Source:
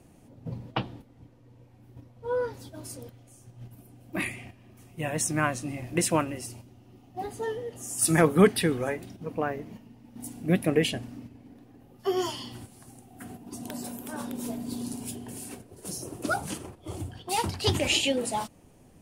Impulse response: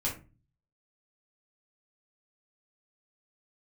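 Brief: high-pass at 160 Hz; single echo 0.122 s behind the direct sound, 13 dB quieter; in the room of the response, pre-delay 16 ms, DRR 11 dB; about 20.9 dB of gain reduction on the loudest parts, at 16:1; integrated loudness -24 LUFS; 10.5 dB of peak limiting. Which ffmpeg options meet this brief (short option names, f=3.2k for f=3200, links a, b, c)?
-filter_complex "[0:a]highpass=160,acompressor=threshold=-34dB:ratio=16,alimiter=level_in=7dB:limit=-24dB:level=0:latency=1,volume=-7dB,aecho=1:1:122:0.224,asplit=2[a][b];[1:a]atrim=start_sample=2205,adelay=16[c];[b][c]afir=irnorm=-1:irlink=0,volume=-16dB[d];[a][d]amix=inputs=2:normalize=0,volume=17.5dB"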